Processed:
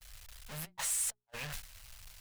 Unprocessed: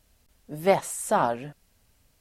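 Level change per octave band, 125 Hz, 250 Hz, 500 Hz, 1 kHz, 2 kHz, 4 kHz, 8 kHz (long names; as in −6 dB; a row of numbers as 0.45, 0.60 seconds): −10.5, −21.0, −29.5, −24.0, −9.0, −1.5, +1.0 decibels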